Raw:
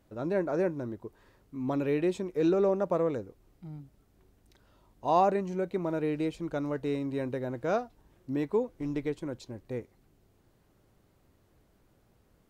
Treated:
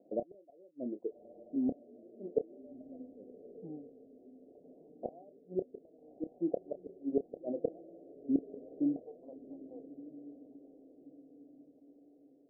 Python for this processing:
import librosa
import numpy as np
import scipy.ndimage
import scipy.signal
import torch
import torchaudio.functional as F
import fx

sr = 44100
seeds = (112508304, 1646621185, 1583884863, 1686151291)

y = fx.dereverb_blind(x, sr, rt60_s=1.3)
y = fx.highpass(y, sr, hz=fx.steps((0.0, 270.0), (8.96, 930.0)), slope=24)
y = fx.gate_flip(y, sr, shuts_db=-26.0, range_db=-38)
y = scipy.signal.sosfilt(scipy.signal.cheby1(6, 3, 730.0, 'lowpass', fs=sr, output='sos'), y)
y = fx.doubler(y, sr, ms=29.0, db=-11.0)
y = fx.echo_diffused(y, sr, ms=1265, feedback_pct=46, wet_db=-14.5)
y = F.gain(torch.from_numpy(y), 10.0).numpy()